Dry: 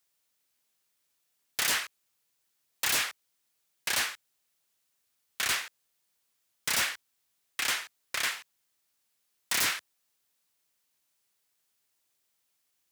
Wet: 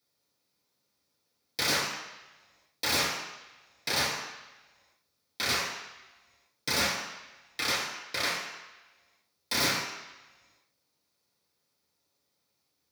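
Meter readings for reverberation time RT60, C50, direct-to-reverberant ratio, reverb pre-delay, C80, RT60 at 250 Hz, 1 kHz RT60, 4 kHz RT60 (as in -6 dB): 1.1 s, 2.5 dB, -4.5 dB, 3 ms, 5.5 dB, 1.0 s, 1.2 s, 1.3 s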